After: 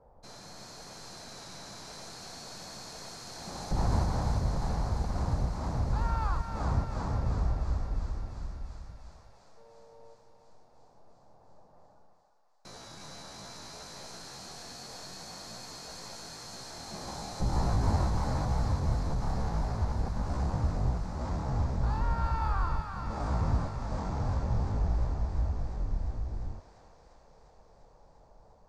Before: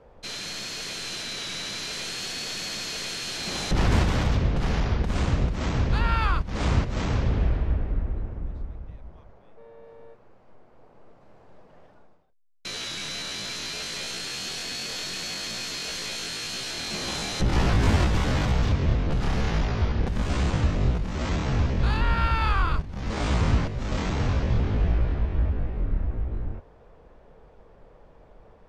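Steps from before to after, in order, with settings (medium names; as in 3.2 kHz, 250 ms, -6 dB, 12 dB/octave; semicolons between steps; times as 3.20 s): FFT filter 130 Hz 0 dB, 400 Hz -5 dB, 840 Hz +4 dB, 3 kHz -21 dB, 4.6 kHz -8 dB; thinning echo 348 ms, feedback 82%, high-pass 1 kHz, level -4 dB; trim -6 dB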